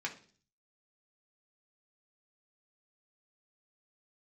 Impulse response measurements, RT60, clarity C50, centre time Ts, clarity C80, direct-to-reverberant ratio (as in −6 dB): 0.45 s, 13.0 dB, 11 ms, 18.0 dB, −1.5 dB